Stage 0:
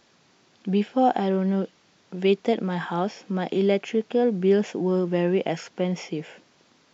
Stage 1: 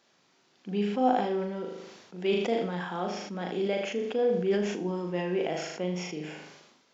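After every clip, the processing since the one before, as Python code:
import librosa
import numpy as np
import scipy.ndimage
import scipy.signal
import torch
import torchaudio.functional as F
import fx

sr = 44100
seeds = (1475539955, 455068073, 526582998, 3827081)

y = fx.highpass(x, sr, hz=230.0, slope=6)
y = fx.room_flutter(y, sr, wall_m=6.7, rt60_s=0.51)
y = fx.sustainer(y, sr, db_per_s=49.0)
y = y * librosa.db_to_amplitude(-7.0)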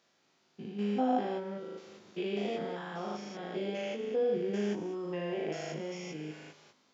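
y = fx.spec_steps(x, sr, hold_ms=200)
y = scipy.signal.sosfilt(scipy.signal.butter(2, 45.0, 'highpass', fs=sr, output='sos'), y)
y = fx.doubler(y, sr, ms=19.0, db=-4.0)
y = y * librosa.db_to_amplitude(-5.0)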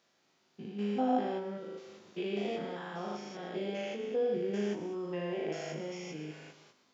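y = x + 10.0 ** (-13.5 / 20.0) * np.pad(x, (int(125 * sr / 1000.0), 0))[:len(x)]
y = y * librosa.db_to_amplitude(-1.0)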